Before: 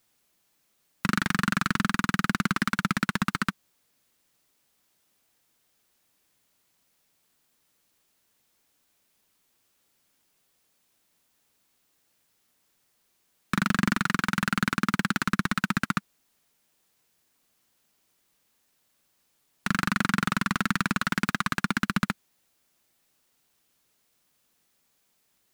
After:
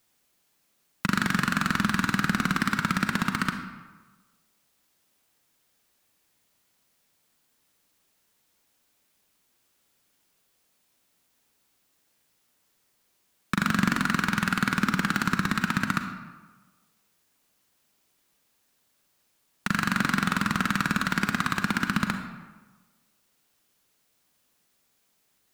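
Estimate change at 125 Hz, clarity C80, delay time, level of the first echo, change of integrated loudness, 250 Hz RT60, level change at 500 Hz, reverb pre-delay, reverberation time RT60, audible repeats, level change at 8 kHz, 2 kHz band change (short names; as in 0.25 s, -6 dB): +1.0 dB, 9.0 dB, none, none, +1.0 dB, 1.2 s, +1.0 dB, 35 ms, 1.3 s, none, +0.5 dB, +1.0 dB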